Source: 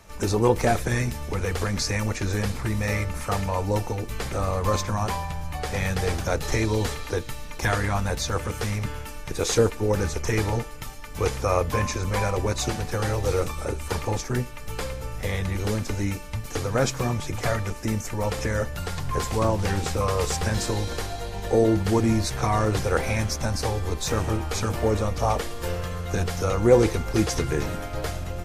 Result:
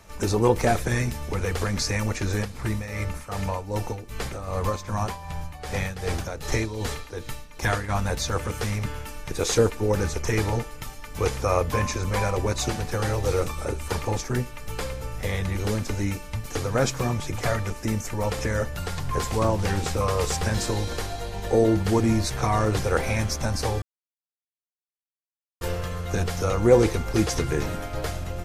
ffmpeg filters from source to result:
ffmpeg -i in.wav -filter_complex "[0:a]asplit=3[link_01][link_02][link_03];[link_01]afade=type=out:start_time=2.43:duration=0.02[link_04];[link_02]tremolo=f=2.6:d=0.7,afade=type=in:start_time=2.43:duration=0.02,afade=type=out:start_time=7.88:duration=0.02[link_05];[link_03]afade=type=in:start_time=7.88:duration=0.02[link_06];[link_04][link_05][link_06]amix=inputs=3:normalize=0,asplit=3[link_07][link_08][link_09];[link_07]atrim=end=23.82,asetpts=PTS-STARTPTS,afade=type=out:start_time=23.816:duration=0.004:curve=hsin[link_10];[link_08]atrim=start=23.82:end=25.61,asetpts=PTS-STARTPTS,volume=0[link_11];[link_09]atrim=start=25.61,asetpts=PTS-STARTPTS,afade=type=in:duration=0.004:curve=hsin[link_12];[link_10][link_11][link_12]concat=n=3:v=0:a=1" out.wav

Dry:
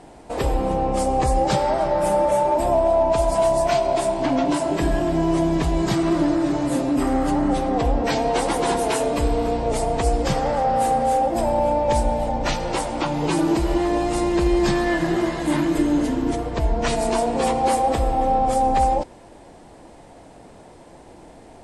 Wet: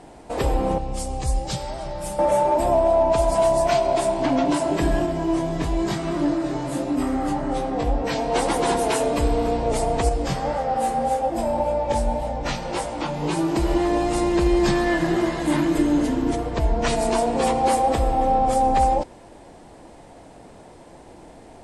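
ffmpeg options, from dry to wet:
ffmpeg -i in.wav -filter_complex "[0:a]asettb=1/sr,asplit=3[link_01][link_02][link_03];[link_01]atrim=end=0.784[link_04];[link_02]atrim=start=0.78:end=2.19,asetpts=PTS-STARTPTS,afade=type=in:duration=0.004:curve=qsin,afade=type=out:start_time=1.406:duration=0.004:curve=qsin,acrossover=split=140|3000[link_05][link_06][link_07];[link_06]acompressor=threshold=-36dB:ratio=2.5:attack=3.2:release=140:knee=2.83:detection=peak[link_08];[link_05][link_08][link_07]amix=inputs=3:normalize=0[link_09];[link_03]atrim=start=2.186[link_10];[link_04][link_09]acrossfade=duration=0.004:curve1=hsin:curve2=qsin[link_11];[link_11][link_10]acrossfade=duration=0.004:curve1=qsin:curve2=hsin,asettb=1/sr,asplit=3[link_12][link_13][link_14];[link_12]atrim=end=5.064[link_15];[link_13]atrim=start=5.06:end=8.32,asetpts=PTS-STARTPTS,afade=type=in:duration=0.004:curve=qsin,afade=type=out:start_time=3.256:duration=0.004:curve=qsin,flanger=delay=19.5:depth=3.3:speed=1[link_16];[link_14]atrim=start=8.316[link_17];[link_15][link_16]acrossfade=duration=0.004:curve1=hsin:curve2=qsin[link_18];[link_18][link_17]acrossfade=duration=0.004:curve1=qsin:curve2=hsin,asettb=1/sr,asplit=3[link_19][link_20][link_21];[link_19]atrim=end=10.094[link_22];[link_20]atrim=start=10.09:end=13.56,asetpts=PTS-STARTPTS,afade=type=in:duration=0.004:curve=qsin,afade=type=out:start_time=3.466:duration=0.004:curve=qsin,flanger=delay=18.5:depth=3.7:speed=1.8[link_23];[link_21]atrim=start=13.556[link_24];[link_22][link_23]acrossfade=duration=0.004:curve1=hsin:curve2=qsin[link_25];[link_25][link_24]acrossfade=duration=0.004:curve1=qsin:curve2=hsin" out.wav

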